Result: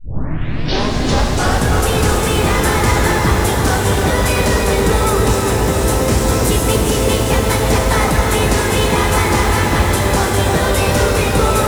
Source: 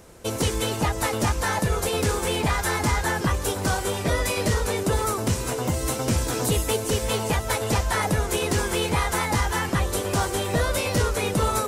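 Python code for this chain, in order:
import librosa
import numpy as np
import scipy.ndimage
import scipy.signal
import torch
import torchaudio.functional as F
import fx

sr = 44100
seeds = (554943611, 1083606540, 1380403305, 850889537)

p1 = fx.tape_start_head(x, sr, length_s=1.76)
p2 = p1 + fx.echo_filtered(p1, sr, ms=325, feedback_pct=80, hz=1600.0, wet_db=-4.5, dry=0)
p3 = fx.rev_shimmer(p2, sr, seeds[0], rt60_s=3.7, semitones=12, shimmer_db=-8, drr_db=2.0)
y = p3 * librosa.db_to_amplitude(5.5)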